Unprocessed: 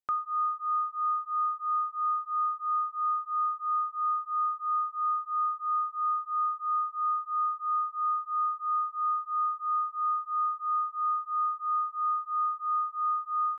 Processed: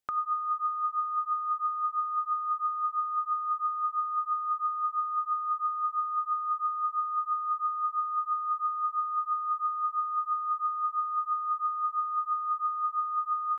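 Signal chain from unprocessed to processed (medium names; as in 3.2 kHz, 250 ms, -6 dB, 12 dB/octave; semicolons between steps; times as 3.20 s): compressor with a negative ratio -31 dBFS, ratio -0.5; trim +2.5 dB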